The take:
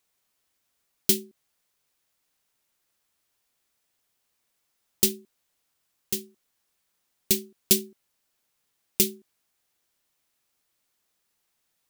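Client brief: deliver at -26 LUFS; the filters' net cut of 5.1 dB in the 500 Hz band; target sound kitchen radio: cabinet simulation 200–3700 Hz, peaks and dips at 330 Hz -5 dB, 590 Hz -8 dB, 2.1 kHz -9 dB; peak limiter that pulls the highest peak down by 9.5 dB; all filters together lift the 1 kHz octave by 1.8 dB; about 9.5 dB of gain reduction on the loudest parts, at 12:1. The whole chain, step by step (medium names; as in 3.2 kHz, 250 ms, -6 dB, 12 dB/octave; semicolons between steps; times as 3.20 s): peaking EQ 500 Hz -4 dB; peaking EQ 1 kHz +5.5 dB; compression 12:1, threshold -26 dBFS; peak limiter -15 dBFS; cabinet simulation 200–3700 Hz, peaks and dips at 330 Hz -5 dB, 590 Hz -8 dB, 2.1 kHz -9 dB; trim +24.5 dB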